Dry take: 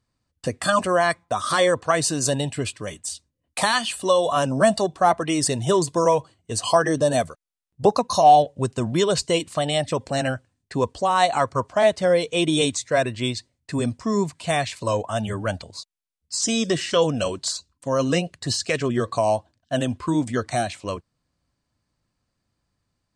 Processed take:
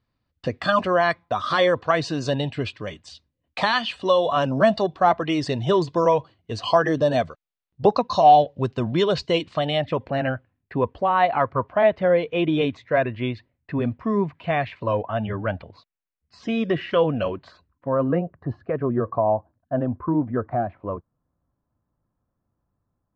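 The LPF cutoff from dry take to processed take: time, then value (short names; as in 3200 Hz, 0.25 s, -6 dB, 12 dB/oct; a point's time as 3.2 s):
LPF 24 dB/oct
9.51 s 4200 Hz
10.2 s 2600 Hz
17.2 s 2600 Hz
18.33 s 1300 Hz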